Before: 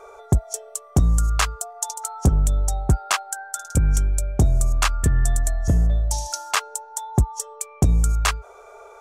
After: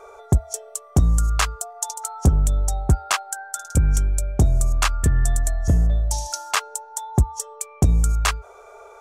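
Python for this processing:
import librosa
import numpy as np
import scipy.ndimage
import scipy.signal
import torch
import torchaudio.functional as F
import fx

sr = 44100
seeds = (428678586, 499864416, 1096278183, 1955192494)

y = fx.peak_eq(x, sr, hz=75.0, db=4.0, octaves=0.23)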